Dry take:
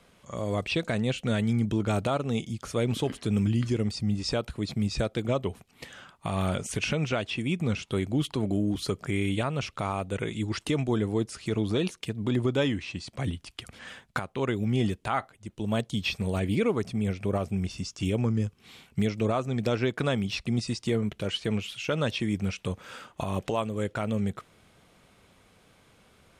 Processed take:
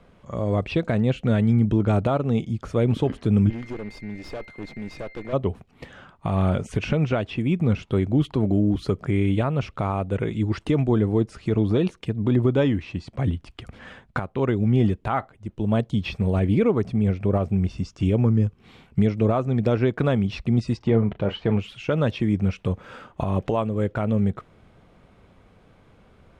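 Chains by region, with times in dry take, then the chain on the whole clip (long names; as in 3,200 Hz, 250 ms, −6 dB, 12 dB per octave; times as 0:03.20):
0:03.49–0:05.32: high-pass filter 290 Hz + steady tone 2,100 Hz −40 dBFS + tube saturation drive 34 dB, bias 0.8
0:20.77–0:21.57: low-pass filter 3,900 Hz + parametric band 850 Hz +7 dB 0.89 octaves + double-tracking delay 35 ms −13 dB
whole clip: low-pass filter 1,100 Hz 6 dB per octave; low-shelf EQ 62 Hz +8 dB; level +6 dB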